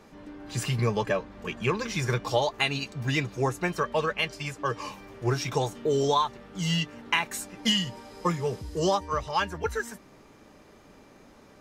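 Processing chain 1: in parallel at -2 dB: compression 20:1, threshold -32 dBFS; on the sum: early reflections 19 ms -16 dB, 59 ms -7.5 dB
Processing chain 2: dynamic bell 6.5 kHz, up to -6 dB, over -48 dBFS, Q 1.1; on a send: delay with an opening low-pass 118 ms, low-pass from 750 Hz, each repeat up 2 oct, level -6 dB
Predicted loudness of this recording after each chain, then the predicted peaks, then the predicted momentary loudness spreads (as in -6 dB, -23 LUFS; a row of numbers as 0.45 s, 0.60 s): -26.0 LUFS, -27.5 LUFS; -9.0 dBFS, -11.0 dBFS; 7 LU, 9 LU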